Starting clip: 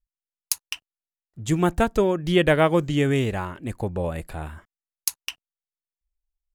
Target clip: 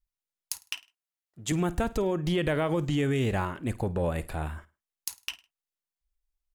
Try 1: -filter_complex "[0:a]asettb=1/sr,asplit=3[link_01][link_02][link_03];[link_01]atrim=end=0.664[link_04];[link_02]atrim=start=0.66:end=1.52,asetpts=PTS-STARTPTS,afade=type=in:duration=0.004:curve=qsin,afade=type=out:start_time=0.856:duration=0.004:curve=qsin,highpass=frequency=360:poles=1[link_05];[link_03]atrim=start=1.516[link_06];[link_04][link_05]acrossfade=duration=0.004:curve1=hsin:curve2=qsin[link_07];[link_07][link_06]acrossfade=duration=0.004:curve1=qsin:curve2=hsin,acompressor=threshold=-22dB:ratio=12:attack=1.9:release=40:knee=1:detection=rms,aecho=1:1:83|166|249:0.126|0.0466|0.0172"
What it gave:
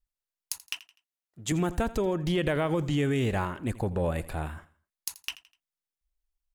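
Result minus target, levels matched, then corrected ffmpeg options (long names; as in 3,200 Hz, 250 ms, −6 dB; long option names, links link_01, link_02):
echo 31 ms late
-filter_complex "[0:a]asettb=1/sr,asplit=3[link_01][link_02][link_03];[link_01]atrim=end=0.664[link_04];[link_02]atrim=start=0.66:end=1.52,asetpts=PTS-STARTPTS,afade=type=in:duration=0.004:curve=qsin,afade=type=out:start_time=0.856:duration=0.004:curve=qsin,highpass=frequency=360:poles=1[link_05];[link_03]atrim=start=1.516[link_06];[link_04][link_05]acrossfade=duration=0.004:curve1=hsin:curve2=qsin[link_07];[link_07][link_06]acrossfade=duration=0.004:curve1=qsin:curve2=hsin,acompressor=threshold=-22dB:ratio=12:attack=1.9:release=40:knee=1:detection=rms,aecho=1:1:52|104|156:0.126|0.0466|0.0172"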